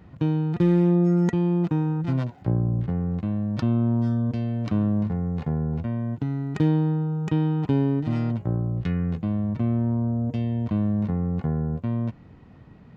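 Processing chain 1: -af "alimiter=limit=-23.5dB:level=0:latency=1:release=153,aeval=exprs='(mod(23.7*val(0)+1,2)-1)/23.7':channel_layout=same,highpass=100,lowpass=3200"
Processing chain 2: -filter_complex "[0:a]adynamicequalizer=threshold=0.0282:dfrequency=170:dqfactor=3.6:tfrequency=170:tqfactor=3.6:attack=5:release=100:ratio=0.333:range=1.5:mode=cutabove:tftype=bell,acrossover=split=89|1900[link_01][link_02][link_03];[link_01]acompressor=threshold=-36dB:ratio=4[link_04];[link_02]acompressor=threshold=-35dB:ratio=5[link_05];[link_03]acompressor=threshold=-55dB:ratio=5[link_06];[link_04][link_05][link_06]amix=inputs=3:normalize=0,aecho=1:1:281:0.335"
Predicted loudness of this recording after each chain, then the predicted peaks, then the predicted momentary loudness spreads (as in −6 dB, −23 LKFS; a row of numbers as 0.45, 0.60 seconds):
−34.0, −34.0 LKFS; −22.5, −21.0 dBFS; 2, 3 LU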